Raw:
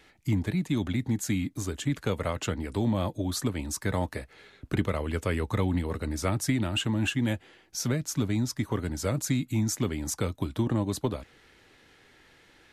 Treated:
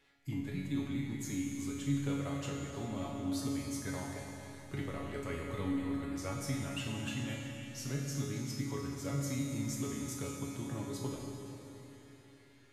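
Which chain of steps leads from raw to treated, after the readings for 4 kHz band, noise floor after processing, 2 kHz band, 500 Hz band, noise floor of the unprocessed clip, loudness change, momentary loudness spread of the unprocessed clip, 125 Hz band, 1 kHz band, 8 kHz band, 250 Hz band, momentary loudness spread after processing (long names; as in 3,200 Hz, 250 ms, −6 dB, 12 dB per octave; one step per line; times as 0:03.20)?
−9.5 dB, −59 dBFS, −9.0 dB, −9.5 dB, −59 dBFS, −8.5 dB, 5 LU, −9.0 dB, −9.0 dB, −8.5 dB, −7.5 dB, 9 LU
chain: tuned comb filter 140 Hz, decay 0.43 s, harmonics all, mix 90%
four-comb reverb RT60 3.7 s, combs from 32 ms, DRR 0.5 dB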